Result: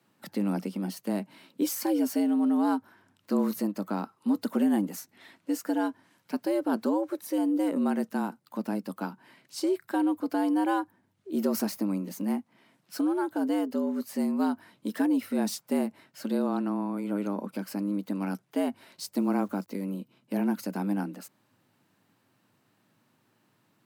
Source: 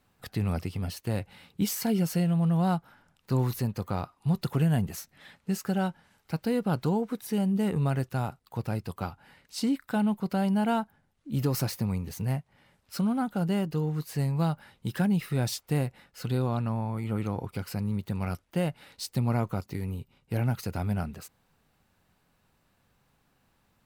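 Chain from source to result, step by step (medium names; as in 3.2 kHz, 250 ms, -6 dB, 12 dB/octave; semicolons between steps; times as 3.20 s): 19.17–19.68 s: word length cut 10-bit, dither none; frequency shift +98 Hz; dynamic bell 3 kHz, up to -5 dB, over -53 dBFS, Q 1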